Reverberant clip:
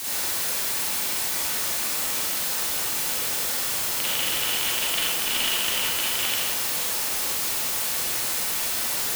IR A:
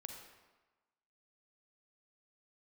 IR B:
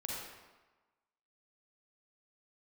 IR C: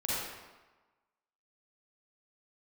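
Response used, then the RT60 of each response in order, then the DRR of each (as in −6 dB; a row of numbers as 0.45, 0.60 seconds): C; 1.2, 1.2, 1.2 seconds; 3.0, −4.0, −8.0 decibels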